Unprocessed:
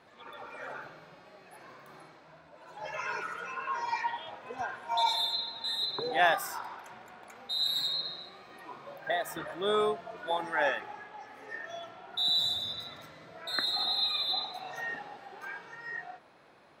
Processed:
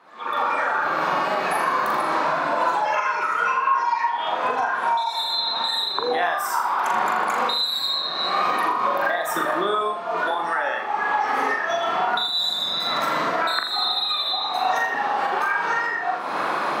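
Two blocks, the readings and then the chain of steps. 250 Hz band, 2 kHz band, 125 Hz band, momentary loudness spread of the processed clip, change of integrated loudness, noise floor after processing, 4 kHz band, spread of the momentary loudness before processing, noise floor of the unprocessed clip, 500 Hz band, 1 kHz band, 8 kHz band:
+13.0 dB, +12.0 dB, +9.0 dB, 3 LU, +9.5 dB, -28 dBFS, +7.0 dB, 21 LU, -57 dBFS, +9.5 dB, +15.5 dB, +9.5 dB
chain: recorder AGC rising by 47 dB/s; high-pass 170 Hz 24 dB/octave; peaking EQ 1.1 kHz +11 dB 0.86 oct; compression, threshold -20 dBFS, peak gain reduction 9.5 dB; flutter echo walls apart 7 m, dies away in 0.49 s

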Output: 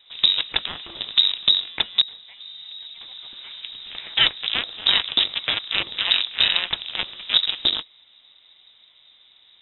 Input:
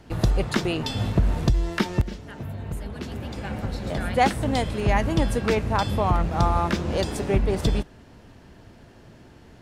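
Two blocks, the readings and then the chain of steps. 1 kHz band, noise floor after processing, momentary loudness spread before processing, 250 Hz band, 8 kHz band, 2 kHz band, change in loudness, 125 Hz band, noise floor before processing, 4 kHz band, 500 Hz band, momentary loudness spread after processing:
-11.0 dB, -55 dBFS, 12 LU, -19.0 dB, under -40 dB, +4.5 dB, +5.0 dB, -24.0 dB, -50 dBFS, +18.0 dB, -16.0 dB, 18 LU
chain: Chebyshev shaper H 4 -17 dB, 5 -26 dB, 7 -12 dB, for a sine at -7.5 dBFS; frequency inversion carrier 3.8 kHz

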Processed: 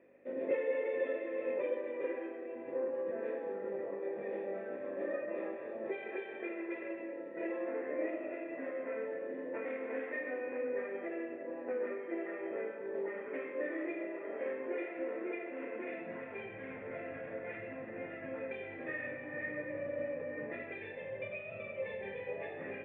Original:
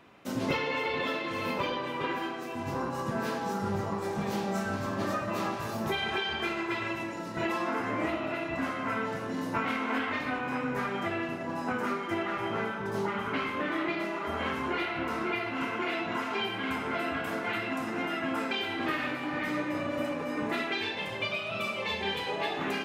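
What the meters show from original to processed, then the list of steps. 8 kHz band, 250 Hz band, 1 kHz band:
under -30 dB, -10.0 dB, -18.0 dB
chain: hum 50 Hz, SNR 14 dB; high-pass sweep 320 Hz -> 110 Hz, 15.65–16.40 s; cascade formant filter e; trim +2 dB

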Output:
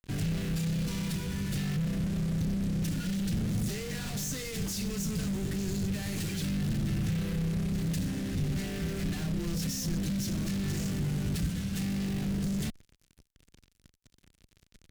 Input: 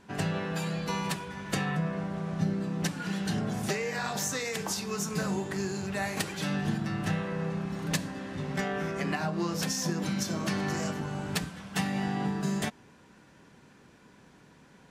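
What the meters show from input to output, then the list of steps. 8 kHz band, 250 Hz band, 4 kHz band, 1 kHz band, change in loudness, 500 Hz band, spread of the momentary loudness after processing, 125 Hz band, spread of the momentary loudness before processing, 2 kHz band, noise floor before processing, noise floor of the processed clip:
-2.5 dB, +0.5 dB, -2.5 dB, -13.5 dB, -0.5 dB, -6.5 dB, 3 LU, +3.0 dB, 3 LU, -8.0 dB, -57 dBFS, -71 dBFS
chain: fuzz box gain 50 dB, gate -49 dBFS; amplifier tone stack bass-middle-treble 10-0-1

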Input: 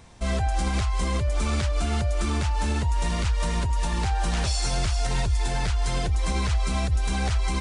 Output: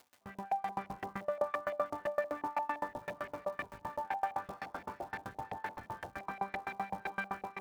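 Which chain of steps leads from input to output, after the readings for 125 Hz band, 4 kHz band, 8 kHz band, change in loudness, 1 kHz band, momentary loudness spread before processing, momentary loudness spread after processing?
-30.0 dB, -25.5 dB, under -25 dB, -13.5 dB, -5.0 dB, 1 LU, 8 LU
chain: frequency weighting A; on a send: echo that smears into a reverb 1085 ms, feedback 52%, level -15.5 dB; on the sum: saturation -33.5 dBFS, distortion -10 dB; chord resonator G3 major, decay 0.72 s; in parallel at -4.5 dB: Schmitt trigger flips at -54 dBFS; on the sum: LFO low-pass saw up 5.8 Hz 680–2100 Hz; crackle 440 per s -58 dBFS; high-pass 58 Hz; level rider gain up to 4.5 dB; sawtooth tremolo in dB decaying 7.8 Hz, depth 29 dB; trim +12.5 dB

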